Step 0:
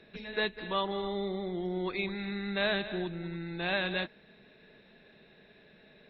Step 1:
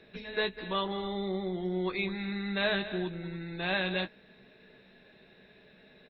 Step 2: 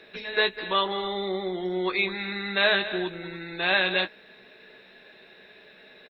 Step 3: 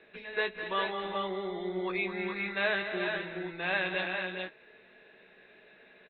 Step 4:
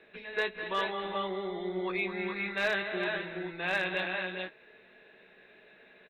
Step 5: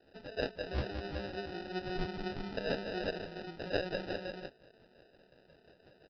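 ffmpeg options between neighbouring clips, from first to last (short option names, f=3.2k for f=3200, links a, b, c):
-filter_complex "[0:a]asplit=2[a][b];[b]adelay=16,volume=-8dB[c];[a][c]amix=inputs=2:normalize=0"
-af "firequalizer=gain_entry='entry(140,0);entry(360,10);entry(1300,14)':delay=0.05:min_phase=1,volume=-5dB"
-filter_complex "[0:a]lowpass=f=3.1k:w=0.5412,lowpass=f=3.1k:w=1.3066,asplit=2[a][b];[b]aecho=0:1:217|407|429:0.282|0.447|0.447[c];[a][c]amix=inputs=2:normalize=0,volume=-7dB"
-af "volume=21dB,asoftclip=hard,volume=-21dB"
-filter_complex "[0:a]acrossover=split=580[a][b];[a]aeval=exprs='val(0)*(1-1/2+1/2*cos(2*PI*5.7*n/s))':c=same[c];[b]aeval=exprs='val(0)*(1-1/2-1/2*cos(2*PI*5.7*n/s))':c=same[d];[c][d]amix=inputs=2:normalize=0,aresample=11025,acrusher=samples=10:mix=1:aa=0.000001,aresample=44100"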